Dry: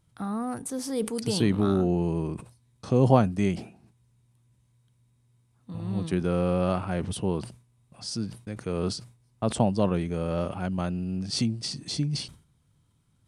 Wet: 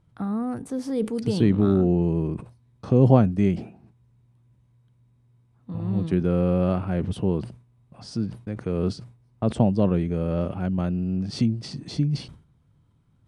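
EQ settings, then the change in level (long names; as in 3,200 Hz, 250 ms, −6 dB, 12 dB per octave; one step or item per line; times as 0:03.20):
dynamic equaliser 930 Hz, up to −6 dB, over −42 dBFS, Q 0.95
low-pass filter 1,300 Hz 6 dB per octave
+5.0 dB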